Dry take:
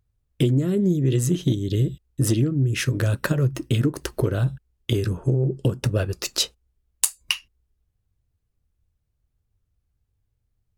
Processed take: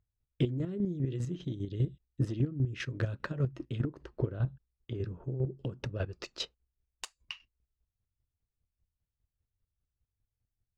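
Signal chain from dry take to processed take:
0:03.81–0:05.32: high-shelf EQ 2,400 Hz −8.5 dB
square-wave tremolo 5 Hz, depth 60%, duty 25%
high-frequency loss of the air 170 metres
level −7.5 dB

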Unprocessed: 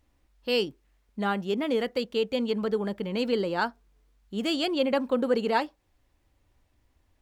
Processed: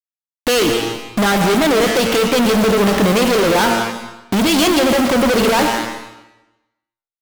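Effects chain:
hold until the input has moved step −47.5 dBFS
low-shelf EQ 170 Hz −6.5 dB
hum removal 114.8 Hz, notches 28
downward compressor 6 to 1, threshold −38 dBFS, peak gain reduction 16.5 dB
fuzz pedal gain 66 dB, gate −59 dBFS
comb and all-pass reverb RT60 1 s, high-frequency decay 0.95×, pre-delay 80 ms, DRR 7.5 dB

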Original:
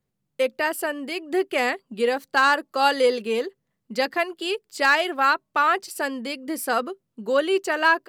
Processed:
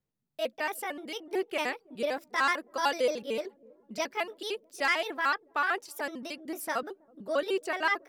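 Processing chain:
pitch shifter gated in a rhythm +3.5 semitones, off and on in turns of 75 ms
delay with a low-pass on its return 325 ms, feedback 52%, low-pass 420 Hz, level −21 dB
level −8 dB

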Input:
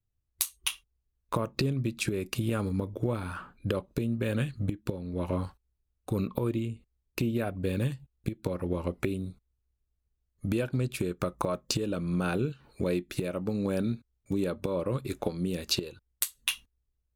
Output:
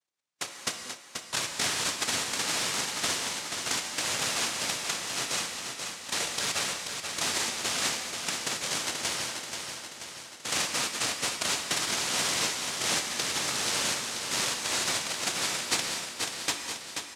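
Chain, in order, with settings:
low-shelf EQ 480 Hz −4 dB
cochlear-implant simulation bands 1
repeating echo 483 ms, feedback 57%, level −6 dB
reverb whose tail is shaped and stops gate 270 ms flat, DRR 5 dB
level +1 dB

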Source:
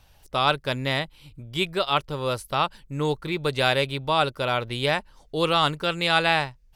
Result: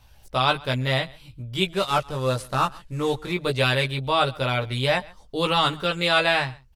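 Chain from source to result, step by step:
0:01.72–0:03.32: variable-slope delta modulation 64 kbit/s
multi-voice chorus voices 4, 0.43 Hz, delay 16 ms, depth 1 ms
single-tap delay 135 ms −23.5 dB
level +4 dB

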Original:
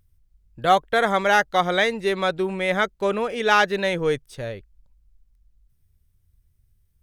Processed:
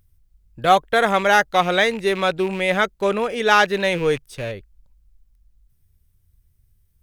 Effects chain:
loose part that buzzes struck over −35 dBFS, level −27 dBFS
high-shelf EQ 10,000 Hz +4.5 dB
level +2.5 dB

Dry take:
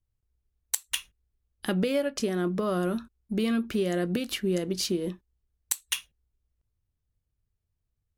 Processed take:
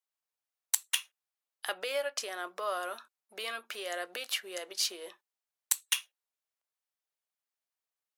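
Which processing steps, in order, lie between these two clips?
high-pass filter 640 Hz 24 dB per octave

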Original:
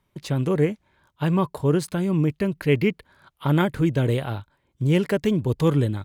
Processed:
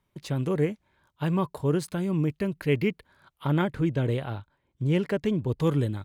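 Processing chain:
0:03.47–0:05.61: high-shelf EQ 6,900 Hz −10.5 dB
level −4.5 dB

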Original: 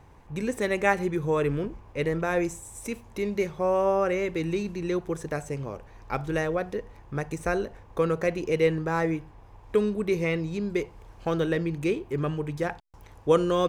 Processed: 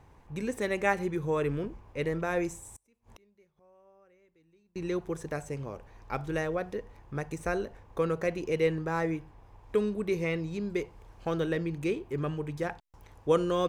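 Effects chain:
0:02.73–0:04.76: gate with flip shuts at −32 dBFS, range −33 dB
level −4 dB

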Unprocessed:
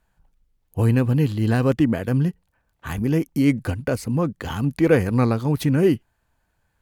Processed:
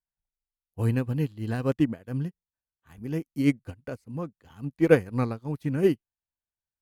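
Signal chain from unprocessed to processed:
expander for the loud parts 2.5 to 1, over −33 dBFS

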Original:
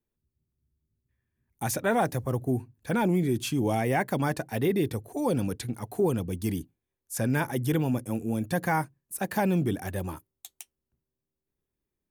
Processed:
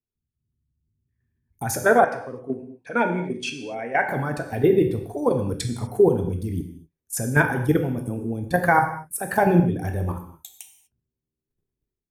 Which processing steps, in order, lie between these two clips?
spectral envelope exaggerated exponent 1.5
dynamic equaliser 1,400 Hz, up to +6 dB, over −45 dBFS, Q 2.3
output level in coarse steps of 12 dB
reverb whose tail is shaped and stops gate 270 ms falling, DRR 4 dB
automatic gain control gain up to 9 dB
0:02.04–0:04.09: loudspeaker in its box 340–7,700 Hz, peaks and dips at 360 Hz −9 dB, 790 Hz −6 dB, 1,200 Hz −4 dB, 2,500 Hz +3 dB, 3,700 Hz −7 dB, 7,200 Hz −8 dB

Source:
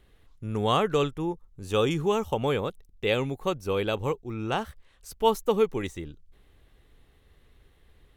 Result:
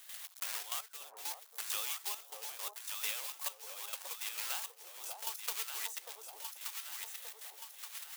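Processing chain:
one scale factor per block 3 bits
high-pass filter 650 Hz 24 dB per octave
spectral tilt +4.5 dB per octave
downward compressor 6 to 1, threshold −39 dBFS, peak gain reduction 25.5 dB
gate pattern ".xx.xxx.x.....x" 168 BPM −12 dB
on a send: delay that swaps between a low-pass and a high-pass 588 ms, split 840 Hz, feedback 65%, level −3 dB
on the sum: multiband upward and downward compressor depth 40%
level +4 dB

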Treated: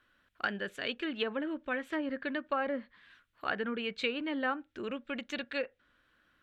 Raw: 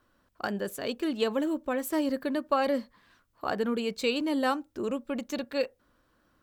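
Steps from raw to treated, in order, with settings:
treble cut that deepens with the level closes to 1,300 Hz, closed at −23 dBFS
flat-topped bell 2,300 Hz +12 dB
level −7 dB

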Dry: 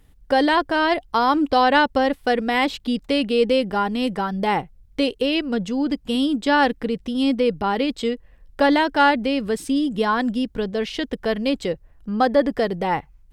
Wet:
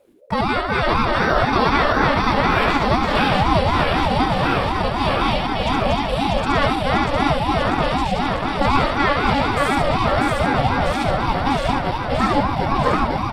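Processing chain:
feedback delay that plays each chunk backwards 322 ms, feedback 84%, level −1.5 dB
repeating echo 70 ms, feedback 31%, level −3.5 dB
ring modulator whose carrier an LFO sweeps 420 Hz, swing 35%, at 4 Hz
level −1 dB

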